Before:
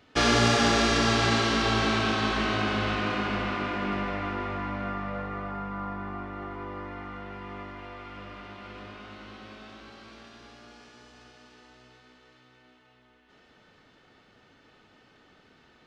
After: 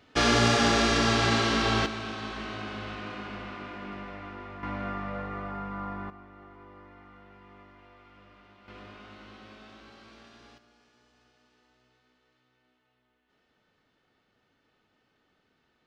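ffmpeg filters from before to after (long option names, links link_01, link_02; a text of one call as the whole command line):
ffmpeg -i in.wav -af "asetnsamples=nb_out_samples=441:pad=0,asendcmd='1.86 volume volume -10dB;4.63 volume volume -1.5dB;6.1 volume volume -13dB;8.68 volume volume -4dB;10.58 volume volume -13dB',volume=-0.5dB" out.wav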